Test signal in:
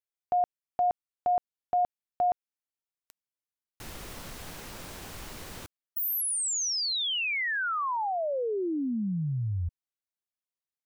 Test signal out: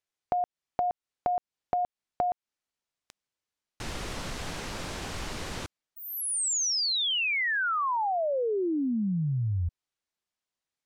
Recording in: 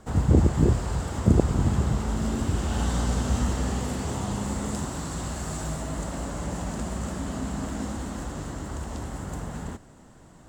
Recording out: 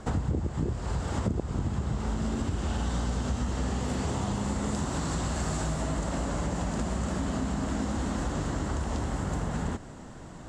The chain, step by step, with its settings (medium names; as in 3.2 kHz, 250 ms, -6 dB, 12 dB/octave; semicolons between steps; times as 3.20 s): low-pass 7.4 kHz 12 dB/octave; compression 10:1, threshold -33 dBFS; trim +7 dB